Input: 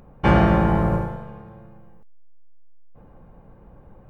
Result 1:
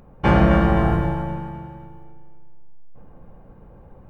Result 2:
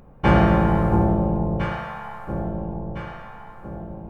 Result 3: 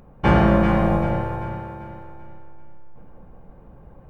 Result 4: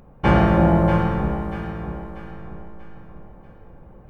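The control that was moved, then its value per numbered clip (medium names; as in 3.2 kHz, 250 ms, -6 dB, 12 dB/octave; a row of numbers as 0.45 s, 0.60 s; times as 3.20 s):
echo whose repeats swap between lows and highs, time: 130 ms, 679 ms, 195 ms, 319 ms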